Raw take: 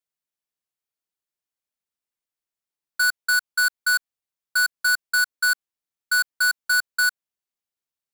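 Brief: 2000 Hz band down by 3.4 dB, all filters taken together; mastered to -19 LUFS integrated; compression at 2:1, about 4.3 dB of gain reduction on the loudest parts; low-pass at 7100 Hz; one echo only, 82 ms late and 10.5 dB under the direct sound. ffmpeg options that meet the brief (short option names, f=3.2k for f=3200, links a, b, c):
-af "lowpass=7.1k,equalizer=f=2k:t=o:g=-6,acompressor=threshold=-28dB:ratio=2,aecho=1:1:82:0.299,volume=9.5dB"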